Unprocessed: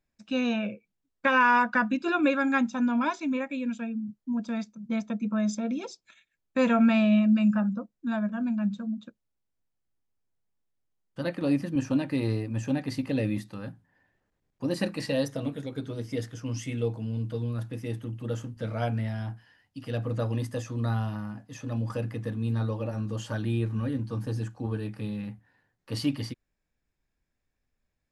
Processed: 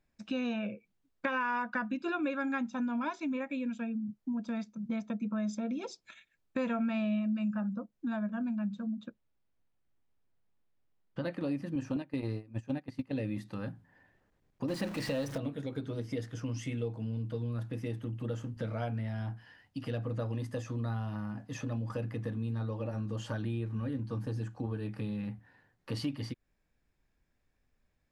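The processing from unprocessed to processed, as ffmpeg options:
ffmpeg -i in.wav -filter_complex "[0:a]asettb=1/sr,asplit=3[link_01][link_02][link_03];[link_01]atrim=end=9.064[link_04];[link_02]atrim=start=9.06:end=11.24,asetpts=PTS-STARTPTS,afade=type=in:duration=0.004:curve=qsin,afade=type=out:start_time=2.176:duration=0.004:curve=qsin,lowpass=4100[link_05];[link_03]atrim=start=11.236[link_06];[link_04][link_05]acrossfade=duration=0.004:curve1=hsin:curve2=qsin[link_07];[link_07][link_06]acrossfade=duration=0.004:curve1=qsin:curve2=hsin,asettb=1/sr,asplit=3[link_08][link_09][link_10];[link_08]atrim=end=11.964[link_11];[link_09]atrim=start=11.96:end=13.25,asetpts=PTS-STARTPTS,afade=type=in:duration=0.004:curve=qsin,afade=type=out:start_time=1.286:duration=0.004:curve=qsin,agate=range=-18dB:threshold=-29dB:ratio=16:release=100:detection=peak[link_12];[link_10]atrim=start=13.246[link_13];[link_11][link_12]acrossfade=duration=0.004:curve1=hsin:curve2=qsin[link_14];[link_14][link_13]acrossfade=duration=0.004:curve1=qsin:curve2=hsin,asettb=1/sr,asplit=3[link_15][link_16][link_17];[link_15]atrim=end=14.684[link_18];[link_16]atrim=start=14.68:end=15.38,asetpts=PTS-STARTPTS,afade=type=in:duration=0.004:curve=qsin,afade=type=out:start_time=0.696:duration=0.004:curve=qsin,aeval=exprs='val(0)+0.5*0.0266*sgn(val(0))':channel_layout=same[link_19];[link_17]atrim=start=15.376[link_20];[link_18][link_19]acrossfade=duration=0.004:curve1=hsin:curve2=qsin[link_21];[link_21][link_20]acrossfade=duration=0.004:curve1=qsin:curve2=hsin,highshelf=frequency=5400:gain=-7.5,acompressor=threshold=-40dB:ratio=3,volume=4.5dB" out.wav

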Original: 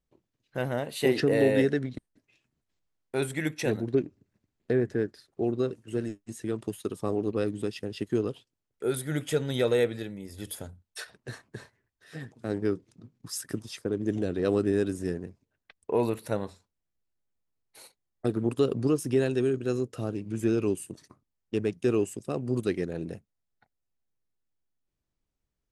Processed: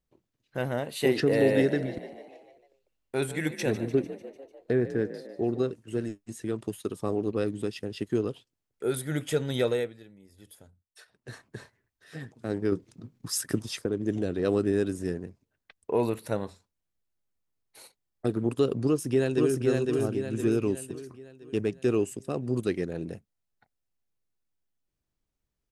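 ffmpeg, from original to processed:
ffmpeg -i in.wav -filter_complex "[0:a]asettb=1/sr,asplit=3[link_01][link_02][link_03];[link_01]atrim=end=1.114[link_04];[link_02]atrim=start=1.11:end=5.63,asetpts=PTS-STARTPTS,afade=type=in:duration=0.004:curve=qsin,afade=type=out:start_time=4.516:duration=0.004:curve=qsin,asplit=7[link_05][link_06][link_07][link_08][link_09][link_10][link_11];[link_06]adelay=149,afreqshift=46,volume=-14dB[link_12];[link_07]adelay=298,afreqshift=92,volume=-18.7dB[link_13];[link_08]adelay=447,afreqshift=138,volume=-23.5dB[link_14];[link_09]adelay=596,afreqshift=184,volume=-28.2dB[link_15];[link_10]adelay=745,afreqshift=230,volume=-32.9dB[link_16];[link_11]adelay=894,afreqshift=276,volume=-37.7dB[link_17];[link_05][link_12][link_13][link_14][link_15][link_16][link_17]amix=inputs=7:normalize=0,atrim=end_sample=199332[link_18];[link_03]atrim=start=5.626[link_19];[link_04][link_18]acrossfade=duration=0.004:curve1=hsin:curve2=qsin[link_20];[link_20][link_19]acrossfade=duration=0.004:curve1=qsin:curve2=hsin,asettb=1/sr,asplit=3[link_21][link_22][link_23];[link_21]atrim=end=12.724[link_24];[link_22]atrim=start=12.72:end=13.86,asetpts=PTS-STARTPTS,afade=type=in:duration=0.004:curve=qsin,afade=type=out:start_time=1.136:duration=0.004:curve=qsin,acontrast=32[link_25];[link_23]atrim=start=13.856[link_26];[link_24][link_25]acrossfade=duration=0.004:curve1=hsin:curve2=qsin[link_27];[link_27][link_26]acrossfade=duration=0.004:curve1=qsin:curve2=hsin,asplit=2[link_28][link_29];[link_29]afade=type=in:start_time=18.86:duration=0.01,afade=type=out:start_time=19.63:duration=0.01,aecho=0:1:510|1020|1530|2040|2550|3060:0.794328|0.357448|0.160851|0.0723832|0.0325724|0.0146576[link_30];[link_28][link_30]amix=inputs=2:normalize=0,asplit=3[link_31][link_32][link_33];[link_31]atrim=end=9.94,asetpts=PTS-STARTPTS,afade=type=out:start_time=9.63:duration=0.31:silence=0.199526[link_34];[link_32]atrim=start=9.94:end=11.11,asetpts=PTS-STARTPTS,volume=-14dB[link_35];[link_33]atrim=start=11.11,asetpts=PTS-STARTPTS,afade=type=in:duration=0.31:silence=0.199526[link_36];[link_34][link_35][link_36]concat=n=3:v=0:a=1" out.wav

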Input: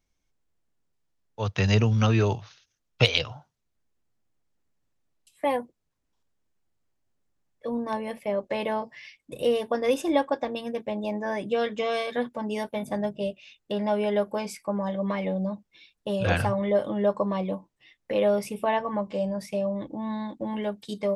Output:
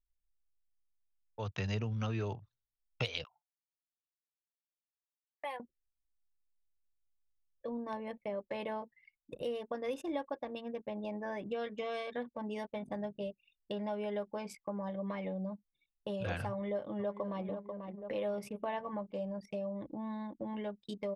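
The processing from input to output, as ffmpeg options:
ffmpeg -i in.wav -filter_complex "[0:a]asettb=1/sr,asplit=3[link_01][link_02][link_03];[link_01]atrim=end=3.244[link_04];[link_02]atrim=start=3.24:end=5.6,asetpts=PTS-STARTPTS,afade=type=in:duration=0.004:curve=qsin,afade=type=out:start_time=2.356:duration=0.004:curve=qsin,highpass=910[link_05];[link_03]atrim=start=5.596[link_06];[link_04][link_05]acrossfade=duration=0.004:curve1=hsin:curve2=qsin[link_07];[link_07][link_06]acrossfade=duration=0.004:curve1=qsin:curve2=hsin,asplit=2[link_08][link_09];[link_09]afade=type=in:start_time=16.5:duration=0.01,afade=type=out:start_time=17.46:duration=0.01,aecho=0:1:490|980|1470|1960|2450:0.281838|0.140919|0.0704596|0.0352298|0.0176149[link_10];[link_08][link_10]amix=inputs=2:normalize=0,asplit=2[link_11][link_12];[link_11]atrim=end=8.94,asetpts=PTS-STARTPTS,afade=type=out:start_time=8.936:duration=0.004:curve=hsin[link_13];[link_12]atrim=start=8.94,asetpts=PTS-STARTPTS,afade=type=in:duration=3.31:curve=log[link_14];[link_13][link_14]concat=n=2:v=0:a=1,anlmdn=0.631,acompressor=threshold=-38dB:ratio=2,adynamicequalizer=threshold=0.00178:dfrequency=4100:dqfactor=0.7:tfrequency=4100:tqfactor=0.7:attack=5:release=100:ratio=0.375:range=2.5:mode=cutabove:tftype=highshelf,volume=-3.5dB" out.wav

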